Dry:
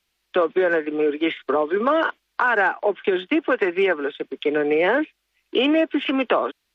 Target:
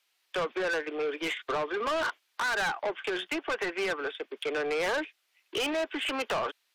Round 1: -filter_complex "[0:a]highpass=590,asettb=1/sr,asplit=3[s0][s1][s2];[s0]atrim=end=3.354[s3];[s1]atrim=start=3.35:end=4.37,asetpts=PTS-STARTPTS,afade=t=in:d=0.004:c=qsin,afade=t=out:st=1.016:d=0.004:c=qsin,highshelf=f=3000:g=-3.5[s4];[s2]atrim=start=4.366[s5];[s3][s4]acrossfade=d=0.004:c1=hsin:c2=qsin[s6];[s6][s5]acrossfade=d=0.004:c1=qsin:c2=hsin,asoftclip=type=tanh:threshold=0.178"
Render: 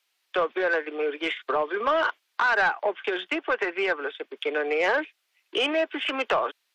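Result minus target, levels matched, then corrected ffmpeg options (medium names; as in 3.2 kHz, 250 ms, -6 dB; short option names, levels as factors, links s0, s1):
saturation: distortion -11 dB
-filter_complex "[0:a]highpass=590,asettb=1/sr,asplit=3[s0][s1][s2];[s0]atrim=end=3.354[s3];[s1]atrim=start=3.35:end=4.37,asetpts=PTS-STARTPTS,afade=t=in:d=0.004:c=qsin,afade=t=out:st=1.016:d=0.004:c=qsin,highshelf=f=3000:g=-3.5[s4];[s2]atrim=start=4.366[s5];[s3][s4]acrossfade=d=0.004:c1=hsin:c2=qsin[s6];[s6][s5]acrossfade=d=0.004:c1=qsin:c2=hsin,asoftclip=type=tanh:threshold=0.0473"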